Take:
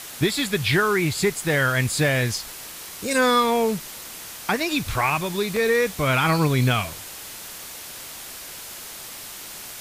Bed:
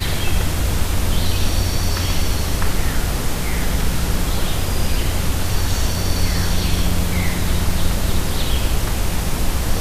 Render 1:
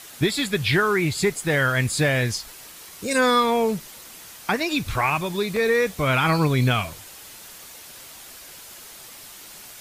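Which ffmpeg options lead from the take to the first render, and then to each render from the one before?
ffmpeg -i in.wav -af "afftdn=noise_reduction=6:noise_floor=-38" out.wav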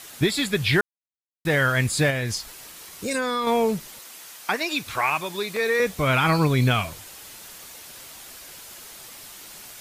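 ffmpeg -i in.wav -filter_complex "[0:a]asettb=1/sr,asplit=3[link_01][link_02][link_03];[link_01]atrim=end=2.104[link_04];[link_02]atrim=start=2.1:end=3.47,asetpts=PTS-STARTPTS,afade=type=in:duration=0.004:curve=qsin,afade=type=out:start_time=1.366:duration=0.004:curve=qsin,acompressor=threshold=-22dB:ratio=4:attack=3.2:release=140:knee=1:detection=peak[link_05];[link_03]atrim=start=3.466[link_06];[link_04][link_05]acrossfade=duration=0.004:curve1=hsin:curve2=qsin[link_07];[link_07][link_06]acrossfade=duration=0.004:curve1=qsin:curve2=hsin,asettb=1/sr,asplit=3[link_08][link_09][link_10];[link_08]atrim=end=3.994[link_11];[link_09]atrim=start=3.99:end=5.8,asetpts=PTS-STARTPTS,afade=type=in:duration=0.004:curve=qsin,afade=type=out:start_time=1.806:duration=0.004:curve=qsin,highpass=frequency=500:poles=1[link_12];[link_10]atrim=start=5.796[link_13];[link_11][link_12]acrossfade=duration=0.004:curve1=hsin:curve2=qsin[link_14];[link_14][link_13]acrossfade=duration=0.004:curve1=qsin:curve2=hsin,asplit=3[link_15][link_16][link_17];[link_15]atrim=end=0.81,asetpts=PTS-STARTPTS,afade=type=out:start_time=0.806:duration=0.004:curve=hsin[link_18];[link_16]atrim=start=0.81:end=1.45,asetpts=PTS-STARTPTS,volume=0[link_19];[link_17]atrim=start=1.45,asetpts=PTS-STARTPTS,afade=type=in:duration=0.004:curve=hsin[link_20];[link_18][link_19][link_20]concat=n=3:v=0:a=1" out.wav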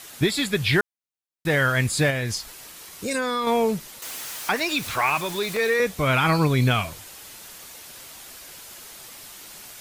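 ffmpeg -i in.wav -filter_complex "[0:a]asettb=1/sr,asplit=3[link_01][link_02][link_03];[link_01]atrim=end=4.024[link_04];[link_02]atrim=start=4.02:end=5.74,asetpts=PTS-STARTPTS,afade=type=in:duration=0.004:curve=qsin,afade=type=out:start_time=1.716:duration=0.004:curve=qsin,aeval=exprs='val(0)+0.5*0.0251*sgn(val(0))':channel_layout=same[link_05];[link_03]atrim=start=5.736[link_06];[link_04][link_05]acrossfade=duration=0.004:curve1=hsin:curve2=qsin[link_07];[link_07][link_06]acrossfade=duration=0.004:curve1=qsin:curve2=hsin" out.wav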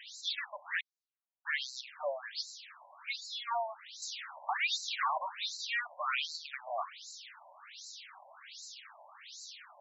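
ffmpeg -i in.wav -af "asoftclip=type=tanh:threshold=-23.5dB,afftfilt=real='re*between(b*sr/1024,730*pow(5500/730,0.5+0.5*sin(2*PI*1.3*pts/sr))/1.41,730*pow(5500/730,0.5+0.5*sin(2*PI*1.3*pts/sr))*1.41)':imag='im*between(b*sr/1024,730*pow(5500/730,0.5+0.5*sin(2*PI*1.3*pts/sr))/1.41,730*pow(5500/730,0.5+0.5*sin(2*PI*1.3*pts/sr))*1.41)':win_size=1024:overlap=0.75" out.wav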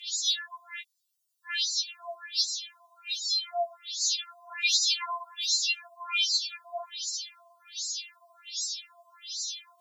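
ffmpeg -i in.wav -af "aexciter=amount=5.6:drive=6.9:freq=2900,afftfilt=real='re*4*eq(mod(b,16),0)':imag='im*4*eq(mod(b,16),0)':win_size=2048:overlap=0.75" out.wav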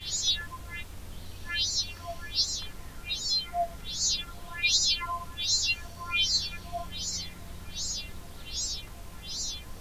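ffmpeg -i in.wav -i bed.wav -filter_complex "[1:a]volume=-24.5dB[link_01];[0:a][link_01]amix=inputs=2:normalize=0" out.wav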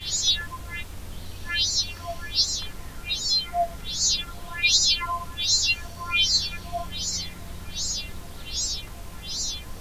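ffmpeg -i in.wav -af "volume=5dB" out.wav

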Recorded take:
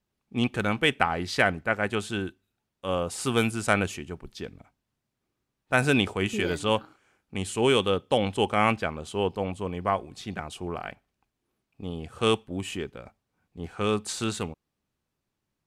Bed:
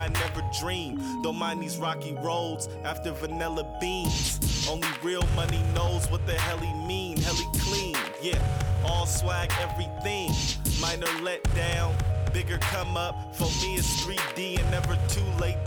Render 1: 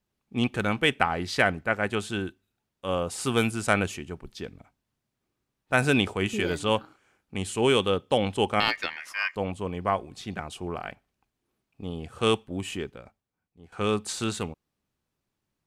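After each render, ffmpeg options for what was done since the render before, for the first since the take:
ffmpeg -i in.wav -filter_complex "[0:a]asettb=1/sr,asplit=3[link_01][link_02][link_03];[link_01]atrim=end=8.604[link_04];[link_02]atrim=start=8.6:end=9.36,asetpts=PTS-STARTPTS,afade=type=in:duration=0.004:curve=qsin,afade=type=out:start_time=0.756:duration=0.004:curve=qsin,aeval=exprs='val(0)*sin(2*PI*2000*n/s)':channel_layout=same[link_05];[link_03]atrim=start=9.356[link_06];[link_04][link_05]acrossfade=duration=0.004:curve1=hsin:curve2=qsin[link_07];[link_07][link_06]acrossfade=duration=0.004:curve1=qsin:curve2=hsin,asplit=2[link_08][link_09];[link_08]atrim=end=13.72,asetpts=PTS-STARTPTS,afade=type=out:start_time=12.85:duration=0.87:curve=qua:silence=0.177828[link_10];[link_09]atrim=start=13.72,asetpts=PTS-STARTPTS,afade=type=in:duration=0.004:curve=hsin:silence=0.177828[link_11];[link_10][link_11]concat=n=2:v=0:a=1" out.wav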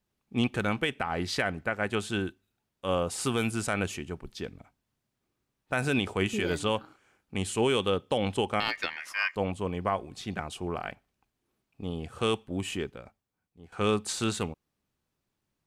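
ffmpeg -i in.wav -af "alimiter=limit=-15.5dB:level=0:latency=1:release=162" out.wav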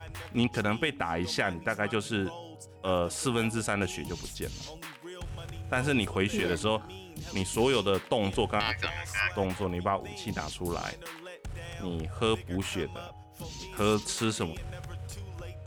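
ffmpeg -i in.wav -i bed.wav -filter_complex "[1:a]volume=-14.5dB[link_01];[0:a][link_01]amix=inputs=2:normalize=0" out.wav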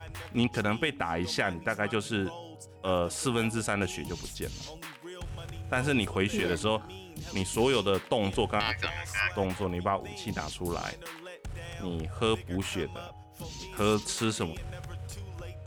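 ffmpeg -i in.wav -af anull out.wav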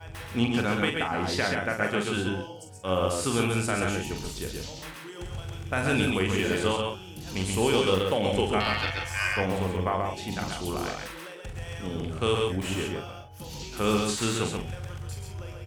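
ffmpeg -i in.wav -filter_complex "[0:a]asplit=2[link_01][link_02];[link_02]adelay=43,volume=-6dB[link_03];[link_01][link_03]amix=inputs=2:normalize=0,aecho=1:1:114|134:0.316|0.668" out.wav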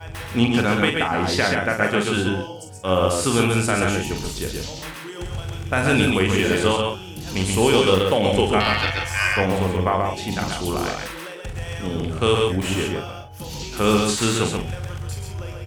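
ffmpeg -i in.wav -af "volume=7dB" out.wav

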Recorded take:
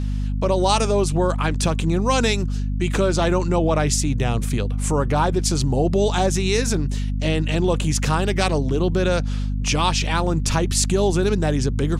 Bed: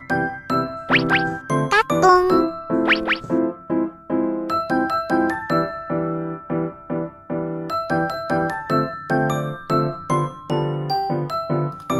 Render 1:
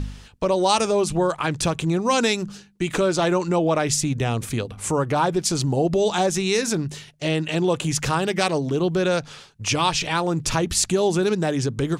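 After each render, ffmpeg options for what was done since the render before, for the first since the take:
ffmpeg -i in.wav -af "bandreject=frequency=50:width_type=h:width=4,bandreject=frequency=100:width_type=h:width=4,bandreject=frequency=150:width_type=h:width=4,bandreject=frequency=200:width_type=h:width=4,bandreject=frequency=250:width_type=h:width=4" out.wav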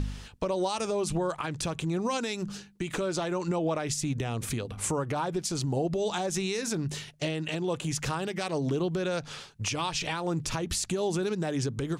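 ffmpeg -i in.wav -af "acompressor=threshold=-24dB:ratio=6,alimiter=limit=-20dB:level=0:latency=1:release=216" out.wav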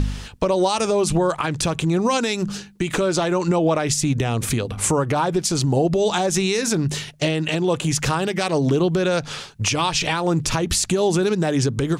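ffmpeg -i in.wav -af "volume=10dB" out.wav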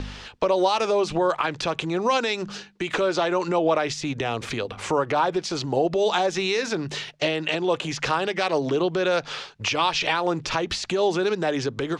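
ffmpeg -i in.wav -filter_complex "[0:a]acrossover=split=5500[link_01][link_02];[link_02]acompressor=threshold=-31dB:ratio=4:attack=1:release=60[link_03];[link_01][link_03]amix=inputs=2:normalize=0,acrossover=split=340 5800:gain=0.224 1 0.0891[link_04][link_05][link_06];[link_04][link_05][link_06]amix=inputs=3:normalize=0" out.wav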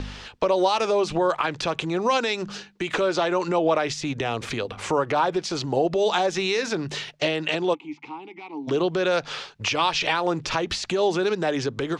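ffmpeg -i in.wav -filter_complex "[0:a]asplit=3[link_01][link_02][link_03];[link_01]afade=type=out:start_time=7.73:duration=0.02[link_04];[link_02]asplit=3[link_05][link_06][link_07];[link_05]bandpass=frequency=300:width_type=q:width=8,volume=0dB[link_08];[link_06]bandpass=frequency=870:width_type=q:width=8,volume=-6dB[link_09];[link_07]bandpass=frequency=2240:width_type=q:width=8,volume=-9dB[link_10];[link_08][link_09][link_10]amix=inputs=3:normalize=0,afade=type=in:start_time=7.73:duration=0.02,afade=type=out:start_time=8.67:duration=0.02[link_11];[link_03]afade=type=in:start_time=8.67:duration=0.02[link_12];[link_04][link_11][link_12]amix=inputs=3:normalize=0" out.wav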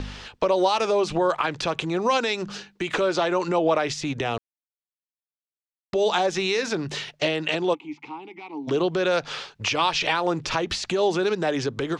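ffmpeg -i in.wav -filter_complex "[0:a]asplit=3[link_01][link_02][link_03];[link_01]atrim=end=4.38,asetpts=PTS-STARTPTS,afade=type=out:start_time=4.376:duration=0.004:curve=hsin[link_04];[link_02]atrim=start=4.38:end=5.93,asetpts=PTS-STARTPTS,volume=0[link_05];[link_03]atrim=start=5.93,asetpts=PTS-STARTPTS,afade=type=in:duration=0.004:curve=hsin[link_06];[link_04][link_05][link_06]concat=n=3:v=0:a=1" out.wav

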